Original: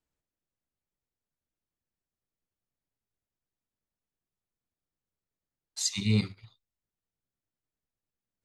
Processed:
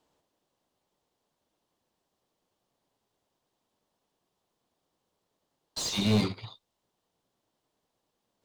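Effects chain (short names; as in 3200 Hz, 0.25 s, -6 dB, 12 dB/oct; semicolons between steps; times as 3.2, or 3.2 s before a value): overdrive pedal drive 30 dB, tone 1400 Hz, clips at -15 dBFS; band shelf 1800 Hz -8.5 dB 1.2 oct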